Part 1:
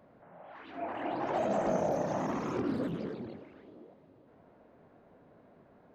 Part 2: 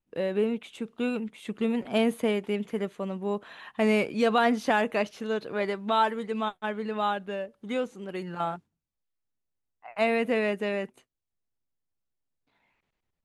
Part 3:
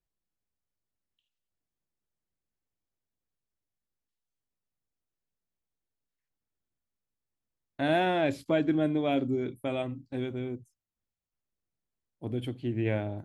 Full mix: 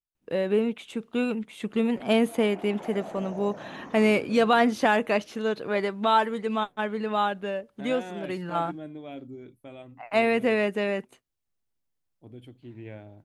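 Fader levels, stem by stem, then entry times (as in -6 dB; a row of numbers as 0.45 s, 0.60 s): -9.0 dB, +2.5 dB, -12.5 dB; 1.50 s, 0.15 s, 0.00 s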